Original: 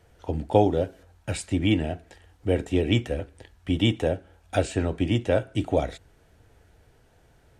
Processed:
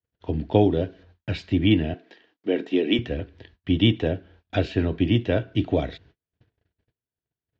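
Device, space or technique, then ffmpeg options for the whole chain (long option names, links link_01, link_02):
guitar cabinet: -filter_complex "[0:a]lowpass=frequency=5800:width=0.5412,lowpass=frequency=5800:width=1.3066,highpass=77,equalizer=frequency=540:width_type=q:width=4:gain=-7,equalizer=frequency=820:width_type=q:width=4:gain=-10,equalizer=frequency=1300:width_type=q:width=4:gain=-7,equalizer=frequency=2200:width_type=q:width=4:gain=-3,lowpass=frequency=4300:width=0.5412,lowpass=frequency=4300:width=1.3066,agate=range=-37dB:threshold=-56dB:ratio=16:detection=peak,asettb=1/sr,asplit=3[link_01][link_02][link_03];[link_01]atrim=end=1.944[link_04];[link_02]atrim=start=1.94:end=2.99,asetpts=PTS-STARTPTS,afade=type=in:duration=0.004:curve=qsin,afade=type=out:start_time=1.046:duration=0.004:curve=qsin,highpass=frequency=230:width=0.5412,highpass=frequency=230:width=1.3066[link_05];[link_03]atrim=start=2.986[link_06];[link_04][link_05]acrossfade=duration=0.004:curve1=hsin:curve2=qsin[link_07];[link_07][link_06]acrossfade=duration=0.004:curve1=qsin:curve2=hsin,equalizer=frequency=7000:width_type=o:width=0.47:gain=5,volume=4dB"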